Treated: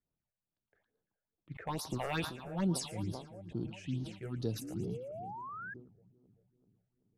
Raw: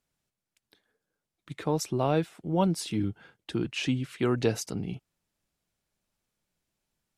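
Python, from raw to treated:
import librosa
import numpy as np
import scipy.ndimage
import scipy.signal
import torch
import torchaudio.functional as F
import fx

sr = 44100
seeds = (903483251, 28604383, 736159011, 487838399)

y = fx.spec_clip(x, sr, under_db=17, at=(1.67, 2.34), fade=0.02)
y = fx.env_lowpass(y, sr, base_hz=1500.0, full_db=-23.5)
y = fx.peak_eq(y, sr, hz=1100.0, db=-13.0, octaves=2.9, at=(3.04, 4.69))
y = fx.echo_split(y, sr, split_hz=1000.0, low_ms=383, high_ms=113, feedback_pct=52, wet_db=-12.0)
y = np.clip(y, -10.0 ** (-18.0 / 20.0), 10.0 ** (-18.0 / 20.0))
y = fx.phaser_stages(y, sr, stages=6, low_hz=250.0, high_hz=2500.0, hz=2.3, feedback_pct=25)
y = fx.spec_paint(y, sr, seeds[0], shape='rise', start_s=4.61, length_s=1.13, low_hz=260.0, high_hz=1700.0, level_db=-38.0)
y = fx.sustainer(y, sr, db_per_s=100.0)
y = F.gain(torch.from_numpy(y), -6.0).numpy()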